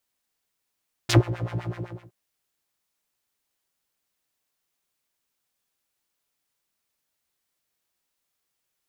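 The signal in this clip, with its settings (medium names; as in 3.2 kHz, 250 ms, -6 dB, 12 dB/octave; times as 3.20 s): synth patch with filter wobble A#2, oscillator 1 triangle, interval +7 st, oscillator 2 level -15 dB, noise -28 dB, filter bandpass, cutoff 730 Hz, Q 1.7, filter envelope 2 oct, filter decay 0.06 s, filter sustain 0%, attack 10 ms, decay 0.12 s, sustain -21 dB, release 0.53 s, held 0.49 s, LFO 7.9 Hz, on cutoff 1.6 oct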